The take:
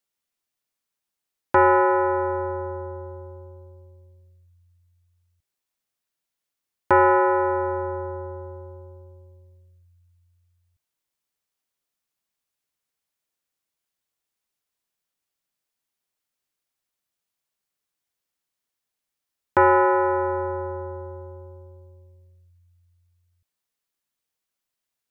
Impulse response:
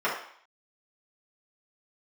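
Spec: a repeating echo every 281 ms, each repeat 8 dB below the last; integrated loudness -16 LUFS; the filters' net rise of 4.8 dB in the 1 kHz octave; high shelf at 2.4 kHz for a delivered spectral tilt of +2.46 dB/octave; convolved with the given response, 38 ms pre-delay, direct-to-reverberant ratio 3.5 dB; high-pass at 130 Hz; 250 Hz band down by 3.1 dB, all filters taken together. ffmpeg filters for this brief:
-filter_complex "[0:a]highpass=130,equalizer=f=250:t=o:g=-8,equalizer=f=1000:t=o:g=6.5,highshelf=f=2400:g=-4,aecho=1:1:281|562|843|1124|1405:0.398|0.159|0.0637|0.0255|0.0102,asplit=2[s0][s1];[1:a]atrim=start_sample=2205,adelay=38[s2];[s1][s2]afir=irnorm=-1:irlink=0,volume=0.141[s3];[s0][s3]amix=inputs=2:normalize=0,volume=1.06"

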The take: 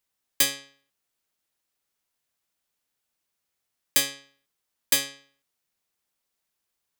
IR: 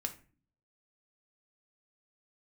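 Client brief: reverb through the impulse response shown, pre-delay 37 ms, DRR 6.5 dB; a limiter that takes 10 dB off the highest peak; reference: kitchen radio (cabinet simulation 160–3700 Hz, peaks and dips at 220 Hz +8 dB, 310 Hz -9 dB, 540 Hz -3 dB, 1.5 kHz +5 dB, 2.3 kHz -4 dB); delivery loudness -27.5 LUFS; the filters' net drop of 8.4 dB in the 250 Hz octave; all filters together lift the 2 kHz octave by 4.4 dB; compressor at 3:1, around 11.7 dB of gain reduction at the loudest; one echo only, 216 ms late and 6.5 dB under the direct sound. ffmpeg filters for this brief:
-filter_complex "[0:a]equalizer=f=250:t=o:g=-5.5,equalizer=f=2000:t=o:g=5,acompressor=threshold=0.0251:ratio=3,alimiter=limit=0.0668:level=0:latency=1,aecho=1:1:216:0.473,asplit=2[s0][s1];[1:a]atrim=start_sample=2205,adelay=37[s2];[s1][s2]afir=irnorm=-1:irlink=0,volume=0.473[s3];[s0][s3]amix=inputs=2:normalize=0,highpass=160,equalizer=f=220:t=q:w=4:g=8,equalizer=f=310:t=q:w=4:g=-9,equalizer=f=540:t=q:w=4:g=-3,equalizer=f=1500:t=q:w=4:g=5,equalizer=f=2300:t=q:w=4:g=-4,lowpass=f=3700:w=0.5412,lowpass=f=3700:w=1.3066,volume=6.68"

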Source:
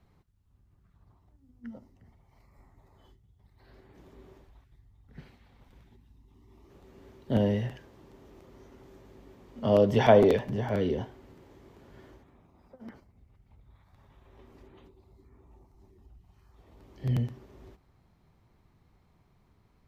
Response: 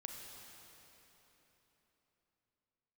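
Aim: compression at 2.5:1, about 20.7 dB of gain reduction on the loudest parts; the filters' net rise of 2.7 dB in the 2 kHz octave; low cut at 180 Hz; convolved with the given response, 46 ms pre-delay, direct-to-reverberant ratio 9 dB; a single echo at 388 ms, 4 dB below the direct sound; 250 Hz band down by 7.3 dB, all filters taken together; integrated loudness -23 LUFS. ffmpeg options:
-filter_complex "[0:a]highpass=180,equalizer=f=250:t=o:g=-8,equalizer=f=2000:t=o:g=3.5,acompressor=threshold=0.00398:ratio=2.5,aecho=1:1:388:0.631,asplit=2[s0][s1];[1:a]atrim=start_sample=2205,adelay=46[s2];[s1][s2]afir=irnorm=-1:irlink=0,volume=0.501[s3];[s0][s3]amix=inputs=2:normalize=0,volume=18.8"

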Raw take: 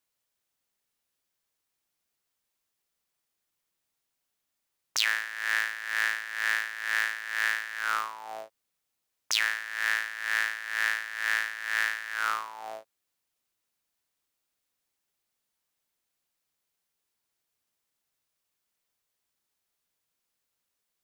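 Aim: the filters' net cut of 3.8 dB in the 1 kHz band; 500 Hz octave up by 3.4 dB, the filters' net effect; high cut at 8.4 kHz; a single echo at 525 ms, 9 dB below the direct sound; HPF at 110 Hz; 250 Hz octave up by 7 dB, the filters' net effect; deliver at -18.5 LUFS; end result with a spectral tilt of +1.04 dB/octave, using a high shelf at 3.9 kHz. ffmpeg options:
-af "highpass=110,lowpass=8400,equalizer=f=250:t=o:g=8,equalizer=f=500:t=o:g=6,equalizer=f=1000:t=o:g=-6,highshelf=f=3900:g=-8.5,aecho=1:1:525:0.355,volume=4.22"

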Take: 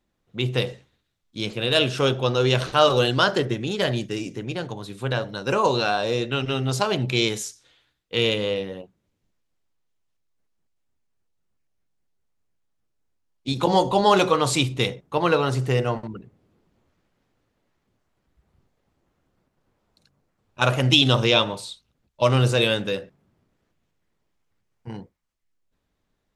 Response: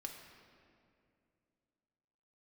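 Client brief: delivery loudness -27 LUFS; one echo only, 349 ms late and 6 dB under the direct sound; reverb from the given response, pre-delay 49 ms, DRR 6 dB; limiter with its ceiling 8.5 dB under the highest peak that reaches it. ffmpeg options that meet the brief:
-filter_complex "[0:a]alimiter=limit=0.282:level=0:latency=1,aecho=1:1:349:0.501,asplit=2[s0][s1];[1:a]atrim=start_sample=2205,adelay=49[s2];[s1][s2]afir=irnorm=-1:irlink=0,volume=0.708[s3];[s0][s3]amix=inputs=2:normalize=0,volume=0.631"

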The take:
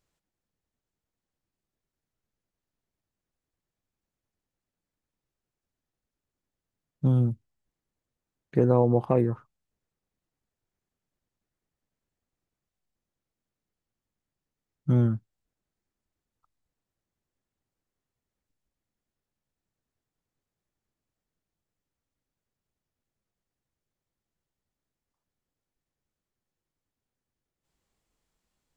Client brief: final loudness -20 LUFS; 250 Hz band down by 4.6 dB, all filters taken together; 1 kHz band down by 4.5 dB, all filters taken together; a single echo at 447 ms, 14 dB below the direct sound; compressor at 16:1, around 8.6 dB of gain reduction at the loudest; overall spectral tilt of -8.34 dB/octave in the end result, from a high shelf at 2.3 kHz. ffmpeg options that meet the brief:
-af "equalizer=f=250:t=o:g=-5.5,equalizer=f=1000:t=o:g=-4.5,highshelf=f=2300:g=-7.5,acompressor=threshold=0.0447:ratio=16,aecho=1:1:447:0.2,volume=5.96"

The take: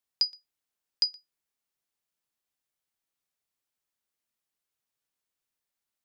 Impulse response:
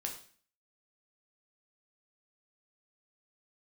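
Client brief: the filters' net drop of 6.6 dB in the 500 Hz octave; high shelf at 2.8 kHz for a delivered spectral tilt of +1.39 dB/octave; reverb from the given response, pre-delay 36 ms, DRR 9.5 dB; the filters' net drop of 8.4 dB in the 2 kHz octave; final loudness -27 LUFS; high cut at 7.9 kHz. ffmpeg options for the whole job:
-filter_complex "[0:a]lowpass=7900,equalizer=f=500:t=o:g=-8,equalizer=f=2000:t=o:g=-8,highshelf=f=2800:g=-5.5,asplit=2[s0][s1];[1:a]atrim=start_sample=2205,adelay=36[s2];[s1][s2]afir=irnorm=-1:irlink=0,volume=0.335[s3];[s0][s3]amix=inputs=2:normalize=0,volume=2.11"

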